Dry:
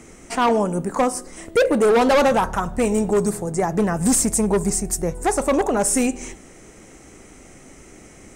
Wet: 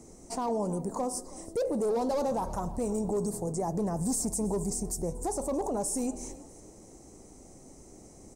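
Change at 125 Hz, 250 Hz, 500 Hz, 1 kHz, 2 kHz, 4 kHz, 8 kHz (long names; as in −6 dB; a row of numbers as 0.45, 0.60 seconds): −8.5, −11.0, −12.0, −13.0, −26.5, −15.5, −11.5 decibels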